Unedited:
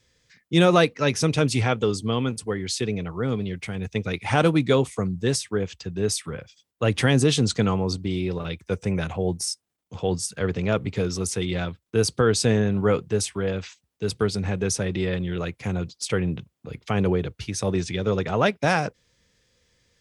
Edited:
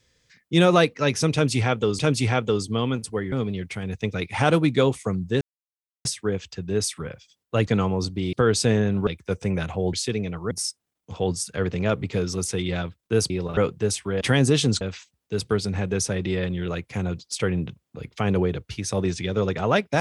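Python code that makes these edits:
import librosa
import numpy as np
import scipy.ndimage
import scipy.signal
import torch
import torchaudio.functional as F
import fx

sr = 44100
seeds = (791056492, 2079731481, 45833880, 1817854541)

y = fx.edit(x, sr, fx.repeat(start_s=1.33, length_s=0.66, count=2),
    fx.move(start_s=2.66, length_s=0.58, to_s=9.34),
    fx.insert_silence(at_s=5.33, length_s=0.64),
    fx.move(start_s=6.95, length_s=0.6, to_s=13.51),
    fx.swap(start_s=8.21, length_s=0.27, other_s=12.13, other_length_s=0.74), tone=tone)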